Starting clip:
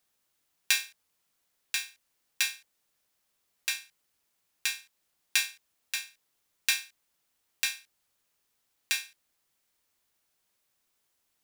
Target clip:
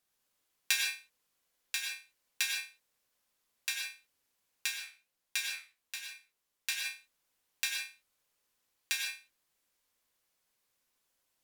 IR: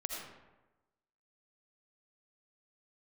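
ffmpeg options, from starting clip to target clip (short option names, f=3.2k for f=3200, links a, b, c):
-filter_complex "[1:a]atrim=start_sample=2205,atrim=end_sample=6174,asetrate=35280,aresample=44100[a];[0:a][a]afir=irnorm=-1:irlink=0,asplit=3[b][c][d];[b]afade=t=out:st=4.73:d=0.02[e];[c]flanger=delay=7.9:depth=8.8:regen=65:speed=1.3:shape=sinusoidal,afade=t=in:st=4.73:d=0.02,afade=t=out:st=6.84:d=0.02[f];[d]afade=t=in:st=6.84:d=0.02[g];[e][f][g]amix=inputs=3:normalize=0,volume=-3.5dB"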